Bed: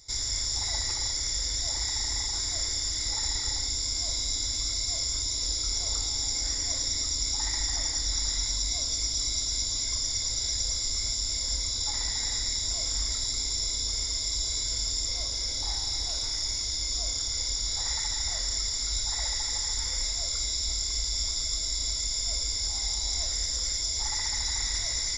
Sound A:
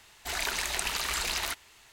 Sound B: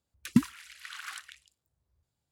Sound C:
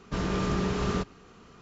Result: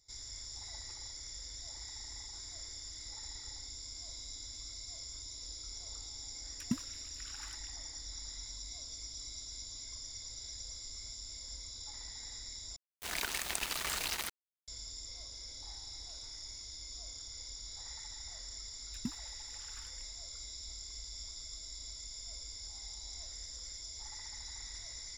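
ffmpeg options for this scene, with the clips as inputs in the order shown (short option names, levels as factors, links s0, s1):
-filter_complex "[2:a]asplit=2[s0][s1];[0:a]volume=0.15[s2];[1:a]aeval=exprs='val(0)*gte(abs(val(0)),0.0316)':c=same[s3];[s2]asplit=2[s4][s5];[s4]atrim=end=12.764[s6];[s3]atrim=end=1.92,asetpts=PTS-STARTPTS,volume=0.631[s7];[s5]atrim=start=14.676[s8];[s0]atrim=end=2.31,asetpts=PTS-STARTPTS,volume=0.237,afade=t=in:d=0.004:c=hsin,afade=t=out:st=2.306:d=0.004:c=hsin,adelay=6350[s9];[s1]atrim=end=2.31,asetpts=PTS-STARTPTS,volume=0.133,afade=t=in:d=0.004:c=hsin,afade=t=out:st=2.306:d=0.004:c=hsin,adelay=18690[s10];[s6][s7]acrossfade=d=0.004:c1=hsin:c2=hsin[s11];[s11][s8]acrossfade=d=0.004:c1=hsin:c2=hsin[s12];[s12][s9][s10]amix=inputs=3:normalize=0"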